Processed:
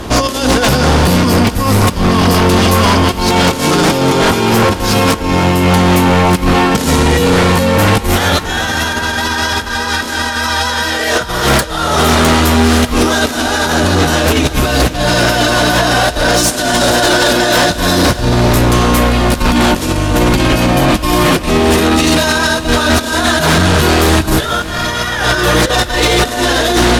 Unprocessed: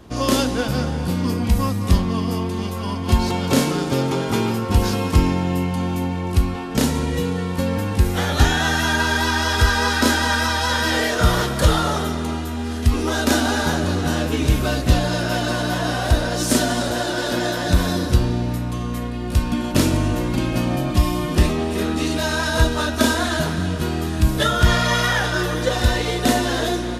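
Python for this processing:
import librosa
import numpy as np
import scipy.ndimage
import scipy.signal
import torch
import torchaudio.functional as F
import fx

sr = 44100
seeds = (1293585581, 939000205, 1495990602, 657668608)

y = fx.peak_eq(x, sr, hz=150.0, db=-6.0, octaves=2.6)
y = fx.over_compress(y, sr, threshold_db=-27.0, ratio=-0.5)
y = fx.fold_sine(y, sr, drive_db=11, ceiling_db=-10.0)
y = fx.echo_diffused(y, sr, ms=500, feedback_pct=65, wet_db=-15)
y = y * librosa.db_to_amplitude(4.0)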